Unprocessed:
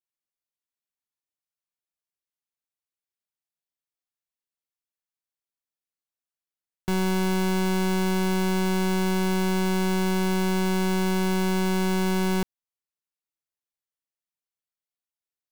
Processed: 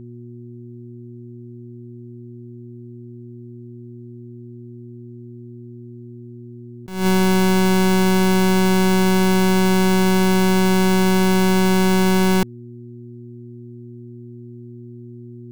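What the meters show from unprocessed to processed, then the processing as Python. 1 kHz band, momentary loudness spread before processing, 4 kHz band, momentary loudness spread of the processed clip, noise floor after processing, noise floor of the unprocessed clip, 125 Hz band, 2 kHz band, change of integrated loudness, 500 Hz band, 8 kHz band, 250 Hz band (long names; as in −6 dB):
+8.0 dB, 1 LU, +8.0 dB, 2 LU, −38 dBFS, below −85 dBFS, can't be measured, +8.0 dB, +8.0 dB, +8.0 dB, +8.0 dB, +8.0 dB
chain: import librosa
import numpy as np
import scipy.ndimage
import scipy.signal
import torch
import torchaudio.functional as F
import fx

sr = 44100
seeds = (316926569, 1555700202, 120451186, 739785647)

y = fx.dmg_buzz(x, sr, base_hz=120.0, harmonics=3, level_db=-45.0, tilt_db=-3, odd_only=False)
y = fx.attack_slew(y, sr, db_per_s=110.0)
y = F.gain(torch.from_numpy(y), 8.0).numpy()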